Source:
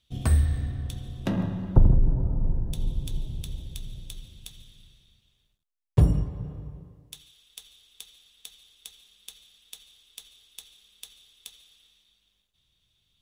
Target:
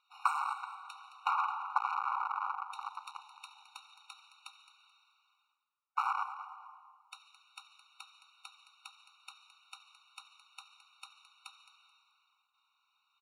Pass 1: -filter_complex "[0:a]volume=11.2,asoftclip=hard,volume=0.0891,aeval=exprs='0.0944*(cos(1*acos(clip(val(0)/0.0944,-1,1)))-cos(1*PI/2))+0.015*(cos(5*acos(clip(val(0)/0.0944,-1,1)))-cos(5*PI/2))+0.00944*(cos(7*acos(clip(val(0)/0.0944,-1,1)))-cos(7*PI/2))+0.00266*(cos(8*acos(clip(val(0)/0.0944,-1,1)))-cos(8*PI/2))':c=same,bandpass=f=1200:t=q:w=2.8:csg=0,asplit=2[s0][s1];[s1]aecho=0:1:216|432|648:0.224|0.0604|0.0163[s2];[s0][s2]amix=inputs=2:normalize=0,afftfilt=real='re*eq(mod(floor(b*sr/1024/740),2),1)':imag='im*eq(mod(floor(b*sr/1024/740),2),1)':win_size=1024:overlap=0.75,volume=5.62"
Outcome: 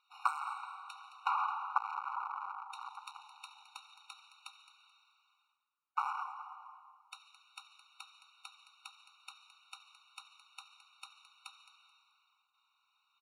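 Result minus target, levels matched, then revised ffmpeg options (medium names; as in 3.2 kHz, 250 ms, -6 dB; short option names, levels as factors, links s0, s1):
overload inside the chain: distortion +12 dB
-filter_complex "[0:a]volume=3.16,asoftclip=hard,volume=0.316,aeval=exprs='0.0944*(cos(1*acos(clip(val(0)/0.0944,-1,1)))-cos(1*PI/2))+0.015*(cos(5*acos(clip(val(0)/0.0944,-1,1)))-cos(5*PI/2))+0.00944*(cos(7*acos(clip(val(0)/0.0944,-1,1)))-cos(7*PI/2))+0.00266*(cos(8*acos(clip(val(0)/0.0944,-1,1)))-cos(8*PI/2))':c=same,bandpass=f=1200:t=q:w=2.8:csg=0,asplit=2[s0][s1];[s1]aecho=0:1:216|432|648:0.224|0.0604|0.0163[s2];[s0][s2]amix=inputs=2:normalize=0,afftfilt=real='re*eq(mod(floor(b*sr/1024/740),2),1)':imag='im*eq(mod(floor(b*sr/1024/740),2),1)':win_size=1024:overlap=0.75,volume=5.62"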